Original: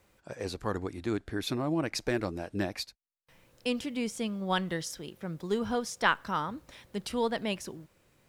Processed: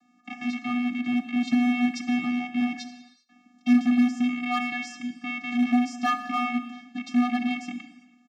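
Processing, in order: rattle on loud lows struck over -45 dBFS, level -21 dBFS; comb 3.2 ms, depth 47%; vocoder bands 16, square 245 Hz; in parallel at -6.5 dB: wavefolder -33 dBFS; on the sum: gated-style reverb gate 430 ms falling, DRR 7.5 dB; trim +6.5 dB

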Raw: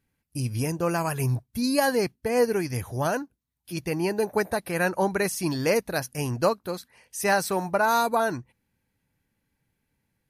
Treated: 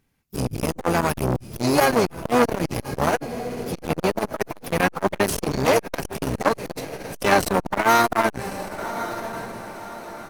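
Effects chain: in parallel at -6.5 dB: Schmitt trigger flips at -25.5 dBFS; on the sum: harmony voices -12 st -7 dB, +5 st -10 dB, +7 st -9 dB; echo that smears into a reverb 1120 ms, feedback 41%, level -13 dB; transformer saturation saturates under 1.2 kHz; trim +4.5 dB

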